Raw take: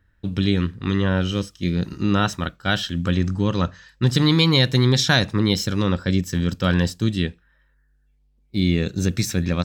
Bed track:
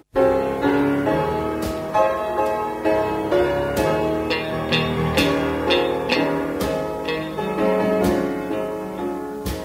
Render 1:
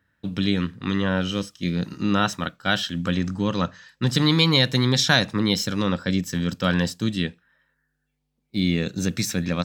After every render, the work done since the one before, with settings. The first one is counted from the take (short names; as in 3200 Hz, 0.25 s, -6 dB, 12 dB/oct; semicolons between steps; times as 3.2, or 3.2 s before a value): HPF 150 Hz 12 dB/oct; bell 370 Hz -5.5 dB 0.37 oct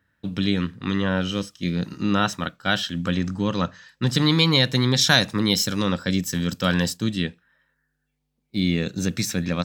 5.01–6.97 high shelf 5900 Hz +9 dB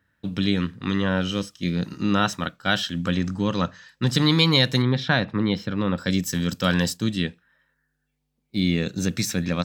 4.82–5.98 air absorption 400 m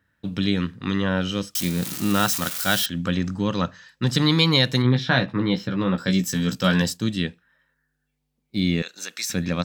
1.55–2.86 switching spikes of -17.5 dBFS; 4.83–6.82 doubler 16 ms -5.5 dB; 8.82–9.3 HPF 1000 Hz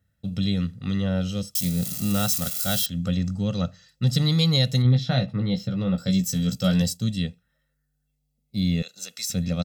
bell 1400 Hz -14 dB 2.5 oct; comb 1.5 ms, depth 74%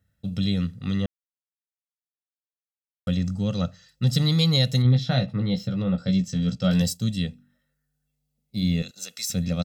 1.06–3.07 mute; 5.82–6.71 air absorption 140 m; 7.24–8.91 de-hum 48.59 Hz, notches 7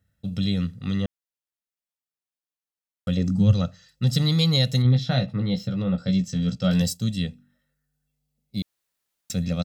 3.16–3.61 bell 550 Hz -> 62 Hz +14.5 dB; 8.62–9.3 room tone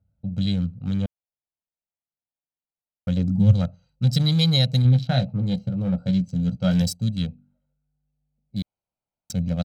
Wiener smoothing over 25 samples; comb 1.3 ms, depth 42%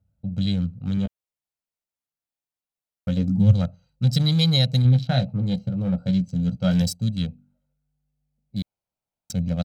0.96–3.37 doubler 15 ms -7.5 dB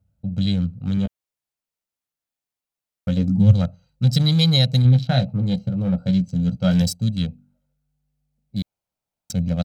gain +2.5 dB